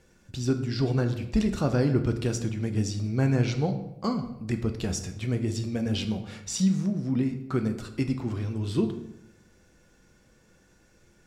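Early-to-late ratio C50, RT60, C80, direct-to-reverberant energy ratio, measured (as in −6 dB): 10.5 dB, 0.85 s, 12.5 dB, 6.0 dB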